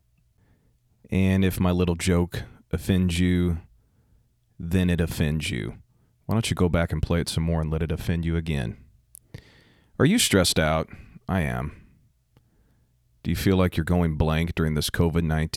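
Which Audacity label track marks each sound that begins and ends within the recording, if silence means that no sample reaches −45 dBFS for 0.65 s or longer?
1.050000	3.650000	sound
4.590000	12.370000	sound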